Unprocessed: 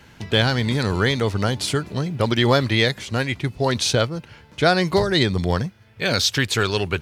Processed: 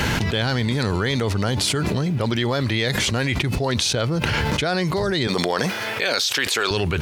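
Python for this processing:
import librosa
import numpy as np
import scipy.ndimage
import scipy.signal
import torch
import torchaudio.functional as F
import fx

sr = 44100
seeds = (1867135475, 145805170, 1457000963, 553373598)

y = fx.highpass(x, sr, hz=430.0, slope=12, at=(5.27, 6.71))
y = fx.env_flatten(y, sr, amount_pct=100)
y = y * librosa.db_to_amplitude(-8.0)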